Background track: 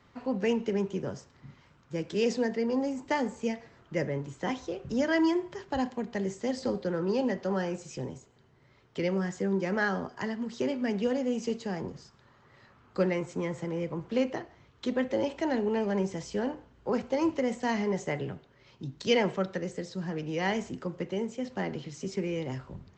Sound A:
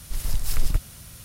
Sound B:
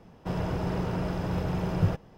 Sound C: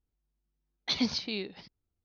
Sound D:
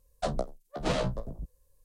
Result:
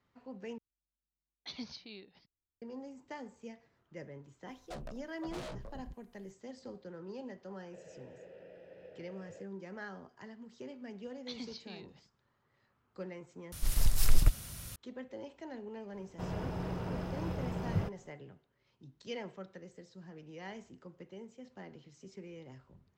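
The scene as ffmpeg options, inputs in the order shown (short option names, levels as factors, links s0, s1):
-filter_complex "[3:a]asplit=2[s0][s1];[2:a]asplit=2[s2][s3];[0:a]volume=0.15[s4];[4:a]asoftclip=type=tanh:threshold=0.0211[s5];[s2]asplit=3[s6][s7][s8];[s6]bandpass=f=530:t=q:w=8,volume=1[s9];[s7]bandpass=f=1840:t=q:w=8,volume=0.501[s10];[s8]bandpass=f=2480:t=q:w=8,volume=0.355[s11];[s9][s10][s11]amix=inputs=3:normalize=0[s12];[s4]asplit=3[s13][s14][s15];[s13]atrim=end=0.584[s16];[s0]atrim=end=2.04,asetpts=PTS-STARTPTS,volume=0.178[s17];[s14]atrim=start=2.616:end=13.524[s18];[1:a]atrim=end=1.24,asetpts=PTS-STARTPTS,volume=0.794[s19];[s15]atrim=start=14.756[s20];[s5]atrim=end=1.84,asetpts=PTS-STARTPTS,volume=0.447,afade=t=in:d=0.004:c=hsin,afade=t=out:st=1.836:d=0.004:c=hsin,adelay=4480[s21];[s12]atrim=end=2.17,asetpts=PTS-STARTPTS,volume=0.335,afade=t=in:d=0.004:c=hsin,afade=t=out:st=2.166:d=0.004:c=hsin,adelay=7470[s22];[s1]atrim=end=2.04,asetpts=PTS-STARTPTS,volume=0.168,afade=t=in:d=0.004:c=hsin,afade=t=out:st=2.036:d=0.004:c=hsin,adelay=10390[s23];[s3]atrim=end=2.17,asetpts=PTS-STARTPTS,volume=0.398,afade=t=in:d=0.004:c=hsin,afade=t=out:st=2.166:d=0.004:c=hsin,adelay=15930[s24];[s16][s17]acrossfade=d=0.004:c1=hsin:c2=hsin[s25];[s25][s18]acrossfade=d=0.004:c1=hsin:c2=hsin[s26];[s26][s19]acrossfade=d=0.004:c1=hsin:c2=hsin[s27];[s27][s20]acrossfade=d=0.004:c1=hsin:c2=hsin[s28];[s28][s21][s22][s23][s24]amix=inputs=5:normalize=0"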